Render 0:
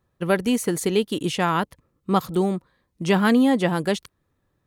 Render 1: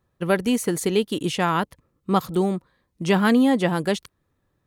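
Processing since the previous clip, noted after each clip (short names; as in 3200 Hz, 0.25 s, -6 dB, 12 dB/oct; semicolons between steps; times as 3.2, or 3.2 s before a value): nothing audible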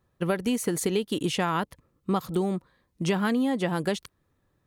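compressor, threshold -22 dBFS, peak gain reduction 8.5 dB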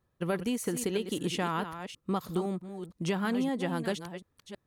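reverse delay 0.325 s, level -9.5 dB; gain -5 dB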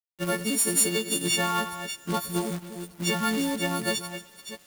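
frequency quantiser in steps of 4 st; Schroeder reverb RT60 3 s, combs from 26 ms, DRR 18.5 dB; companded quantiser 4-bit; gain +2 dB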